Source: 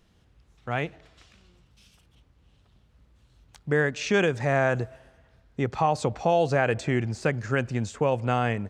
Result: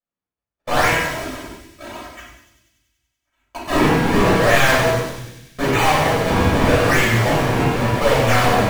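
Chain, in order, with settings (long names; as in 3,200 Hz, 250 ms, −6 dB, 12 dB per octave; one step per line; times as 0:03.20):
stylus tracing distortion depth 0.18 ms
parametric band 2,100 Hz +12.5 dB 0.73 octaves
sample-and-hold swept by an LFO 42×, swing 160% 0.82 Hz
0:00.86–0:03.79: comb filter 3.1 ms, depth 96%
hum removal 163.6 Hz, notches 19
mid-hump overdrive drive 33 dB, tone 3,900 Hz, clips at −9 dBFS
high-shelf EQ 7,700 Hz +4 dB
noise gate −34 dBFS, range −50 dB
delay with a high-pass on its return 96 ms, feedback 71%, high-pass 4,500 Hz, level −6.5 dB
convolution reverb RT60 0.85 s, pre-delay 3 ms, DRR −7.5 dB
level −10 dB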